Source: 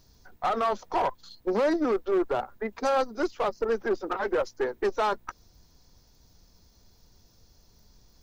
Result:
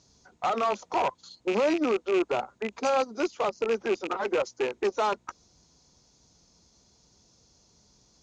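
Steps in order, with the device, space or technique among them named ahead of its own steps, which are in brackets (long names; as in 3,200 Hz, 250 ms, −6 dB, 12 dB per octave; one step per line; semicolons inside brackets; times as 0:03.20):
car door speaker with a rattle (loose part that buzzes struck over −39 dBFS, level −23 dBFS; loudspeaker in its box 86–7,600 Hz, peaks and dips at 96 Hz −7 dB, 1,700 Hz −5 dB, 6,800 Hz +9 dB)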